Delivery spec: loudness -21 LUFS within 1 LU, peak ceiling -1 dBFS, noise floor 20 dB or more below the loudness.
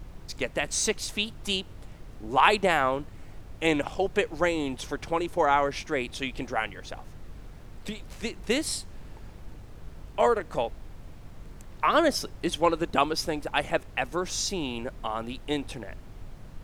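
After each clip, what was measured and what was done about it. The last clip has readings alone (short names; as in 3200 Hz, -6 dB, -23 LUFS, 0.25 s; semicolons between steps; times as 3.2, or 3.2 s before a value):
hum 50 Hz; harmonics up to 150 Hz; hum level -49 dBFS; noise floor -46 dBFS; noise floor target -48 dBFS; loudness -27.5 LUFS; peak -4.5 dBFS; loudness target -21.0 LUFS
-> de-hum 50 Hz, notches 3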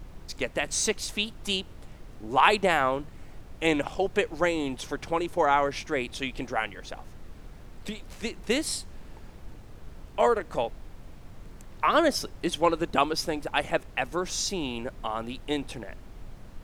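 hum none; noise floor -47 dBFS; noise floor target -48 dBFS
-> noise print and reduce 6 dB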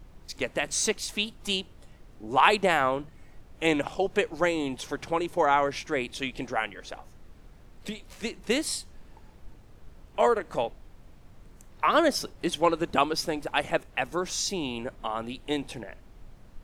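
noise floor -52 dBFS; loudness -27.5 LUFS; peak -4.5 dBFS; loudness target -21.0 LUFS
-> gain +6.5 dB; limiter -1 dBFS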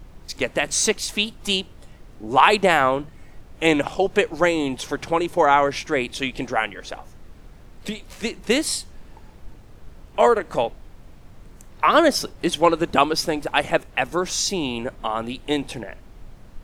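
loudness -21.5 LUFS; peak -1.0 dBFS; noise floor -46 dBFS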